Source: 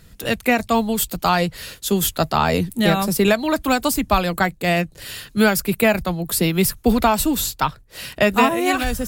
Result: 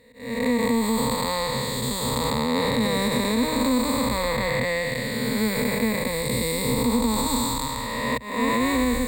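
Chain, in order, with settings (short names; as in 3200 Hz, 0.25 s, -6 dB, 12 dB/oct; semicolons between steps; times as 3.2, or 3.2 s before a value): time blur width 0.575 s; gate with hold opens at -26 dBFS; auto swell 0.351 s; ripple EQ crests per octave 0.99, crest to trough 18 dB; limiter -13 dBFS, peak gain reduction 5 dB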